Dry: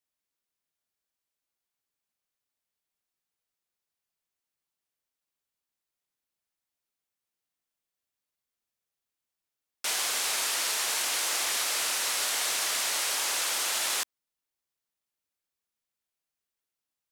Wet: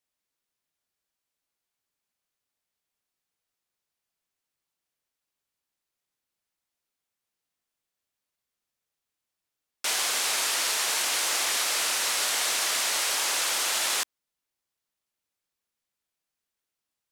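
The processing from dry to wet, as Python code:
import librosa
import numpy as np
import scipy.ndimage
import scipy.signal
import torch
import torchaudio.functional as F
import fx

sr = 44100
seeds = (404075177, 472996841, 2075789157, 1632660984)

y = fx.high_shelf(x, sr, hz=12000.0, db=-4.0)
y = F.gain(torch.from_numpy(y), 3.0).numpy()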